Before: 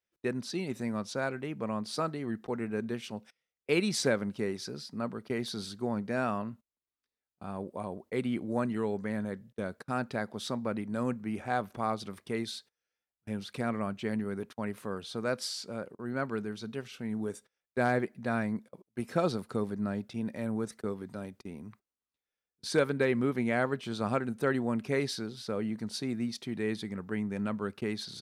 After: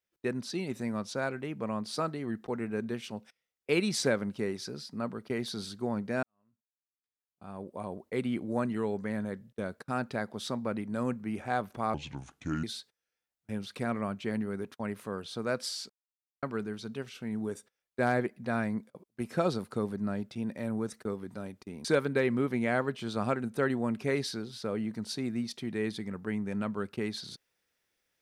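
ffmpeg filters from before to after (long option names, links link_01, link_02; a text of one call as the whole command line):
ffmpeg -i in.wav -filter_complex "[0:a]asplit=7[link_01][link_02][link_03][link_04][link_05][link_06][link_07];[link_01]atrim=end=6.23,asetpts=PTS-STARTPTS,afade=type=out:start_time=6.226:duration=0.004:curve=hsin[link_08];[link_02]atrim=start=6.23:end=11.944,asetpts=PTS-STARTPTS,afade=type=in:duration=1.69:curve=qua[link_09];[link_03]atrim=start=11.94:end=12.42,asetpts=PTS-STARTPTS,asetrate=30429,aresample=44100,atrim=end_sample=30678,asetpts=PTS-STARTPTS[link_10];[link_04]atrim=start=12.416:end=15.68,asetpts=PTS-STARTPTS,afade=type=out:start_time=3.26:duration=0.004:curve=hsin[link_11];[link_05]atrim=start=15.68:end=16.21,asetpts=PTS-STARTPTS,volume=0[link_12];[link_06]atrim=start=16.21:end=21.632,asetpts=PTS-STARTPTS,afade=type=in:duration=0.004:curve=hsin[link_13];[link_07]atrim=start=22.688[link_14];[link_08][link_09]concat=n=2:v=0:a=1[link_15];[link_15][link_10]acrossfade=duration=0.004:curve1=hsin:curve2=hsin[link_16];[link_11][link_12][link_13]concat=n=3:v=0:a=1[link_17];[link_16][link_17]acrossfade=duration=0.004:curve1=hsin:curve2=hsin[link_18];[link_18][link_14]acrossfade=duration=0.004:curve1=hsin:curve2=hsin" out.wav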